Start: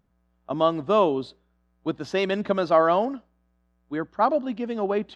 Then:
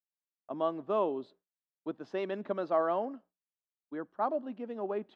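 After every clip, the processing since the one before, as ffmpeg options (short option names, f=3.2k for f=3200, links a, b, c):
-af "highpass=240,agate=range=-33dB:threshold=-43dB:ratio=3:detection=peak,lowpass=f=1.2k:p=1,volume=-8.5dB"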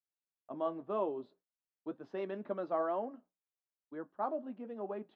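-af "highshelf=f=3.2k:g=-10,flanger=delay=8.2:depth=2.1:regen=-58:speed=2:shape=triangular"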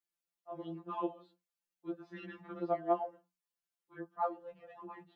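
-af "afftfilt=real='re*2.83*eq(mod(b,8),0)':imag='im*2.83*eq(mod(b,8),0)':win_size=2048:overlap=0.75,volume=3.5dB"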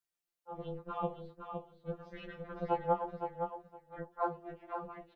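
-filter_complex "[0:a]aeval=exprs='val(0)*sin(2*PI*170*n/s)':c=same,asplit=2[a][b];[b]adelay=20,volume=-11.5dB[c];[a][c]amix=inputs=2:normalize=0,asplit=2[d][e];[e]aecho=0:1:514|1028|1542:0.473|0.0804|0.0137[f];[d][f]amix=inputs=2:normalize=0,volume=3dB"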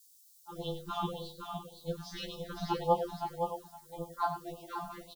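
-af "aecho=1:1:47|97:0.141|0.251,aexciter=amount=13.4:drive=6:freq=3.6k,afftfilt=real='re*(1-between(b*sr/1024,400*pow(1800/400,0.5+0.5*sin(2*PI*1.8*pts/sr))/1.41,400*pow(1800/400,0.5+0.5*sin(2*PI*1.8*pts/sr))*1.41))':imag='im*(1-between(b*sr/1024,400*pow(1800/400,0.5+0.5*sin(2*PI*1.8*pts/sr))/1.41,400*pow(1800/400,0.5+0.5*sin(2*PI*1.8*pts/sr))*1.41))':win_size=1024:overlap=0.75,volume=3.5dB"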